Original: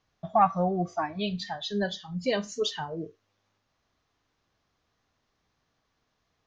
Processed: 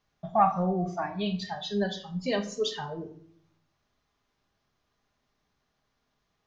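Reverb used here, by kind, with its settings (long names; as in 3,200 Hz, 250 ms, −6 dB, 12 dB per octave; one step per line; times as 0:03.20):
rectangular room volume 840 cubic metres, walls furnished, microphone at 1.3 metres
level −2.5 dB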